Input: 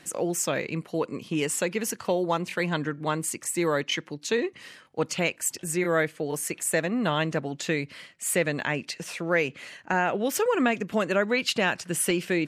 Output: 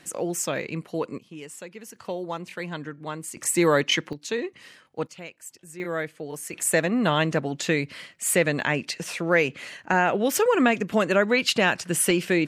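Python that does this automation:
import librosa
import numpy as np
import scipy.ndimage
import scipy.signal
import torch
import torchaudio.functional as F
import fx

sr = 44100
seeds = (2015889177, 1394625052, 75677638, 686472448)

y = fx.gain(x, sr, db=fx.steps((0.0, -0.5), (1.18, -13.0), (1.96, -6.0), (3.37, 5.5), (4.13, -2.5), (5.07, -14.0), (5.8, -5.0), (6.53, 3.5)))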